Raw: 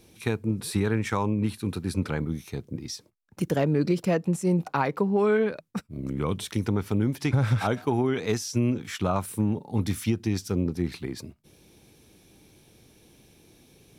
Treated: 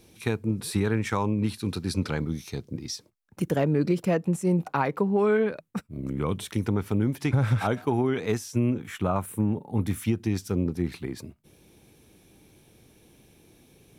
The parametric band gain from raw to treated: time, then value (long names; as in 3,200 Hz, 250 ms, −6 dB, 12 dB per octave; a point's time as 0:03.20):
parametric band 4,900 Hz 1 octave
0:01.20 0 dB
0:01.68 +7 dB
0:02.54 +7 dB
0:03.46 −4.5 dB
0:08.14 −4.5 dB
0:08.82 −13 dB
0:09.80 −13 dB
0:10.22 −4.5 dB